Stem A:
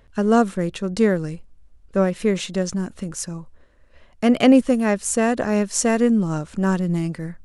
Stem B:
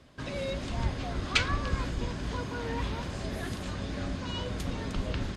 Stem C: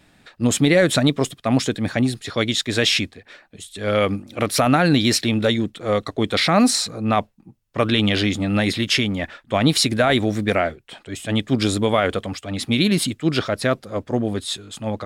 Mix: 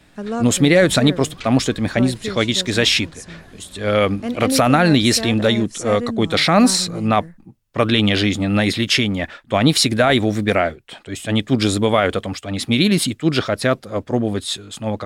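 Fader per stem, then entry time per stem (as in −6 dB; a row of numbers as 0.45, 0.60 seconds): −8.5, −10.0, +2.5 decibels; 0.00, 0.05, 0.00 seconds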